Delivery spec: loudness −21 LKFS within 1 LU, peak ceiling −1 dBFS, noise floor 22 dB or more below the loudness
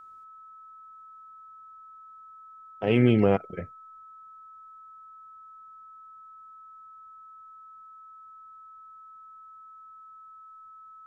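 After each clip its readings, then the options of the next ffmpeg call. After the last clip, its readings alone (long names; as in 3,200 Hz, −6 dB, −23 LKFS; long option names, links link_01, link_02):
interfering tone 1,300 Hz; level of the tone −46 dBFS; integrated loudness −24.0 LKFS; sample peak −8.0 dBFS; target loudness −21.0 LKFS
→ -af "bandreject=frequency=1300:width=30"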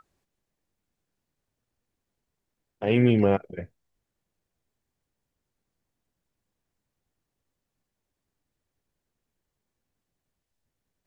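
interfering tone none found; integrated loudness −23.0 LKFS; sample peak −8.0 dBFS; target loudness −21.0 LKFS
→ -af "volume=2dB"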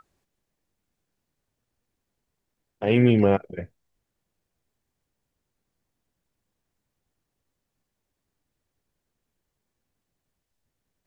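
integrated loudness −21.0 LKFS; sample peak −6.0 dBFS; background noise floor −82 dBFS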